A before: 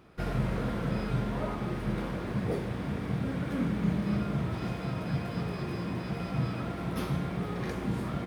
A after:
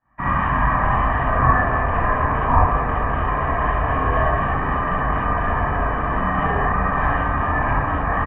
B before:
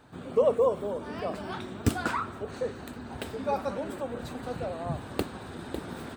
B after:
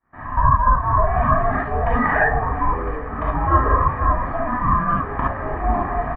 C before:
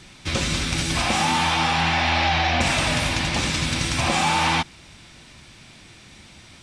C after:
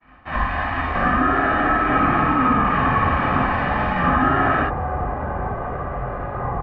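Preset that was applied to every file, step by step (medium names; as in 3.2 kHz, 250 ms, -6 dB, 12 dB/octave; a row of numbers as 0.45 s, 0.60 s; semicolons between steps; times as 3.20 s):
rattle on loud lows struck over -29 dBFS, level -29 dBFS; low-pass 1.4 kHz 24 dB/octave; expander -44 dBFS; elliptic high-pass 380 Hz; comb 1.6 ms, depth 68%; compression 6:1, threshold -27 dBFS; ring modulator 500 Hz; ever faster or slower copies 423 ms, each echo -7 st, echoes 3, each echo -6 dB; gated-style reverb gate 90 ms rising, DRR -5 dB; normalise loudness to -20 LUFS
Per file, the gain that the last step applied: +15.5 dB, +11.5 dB, +8.0 dB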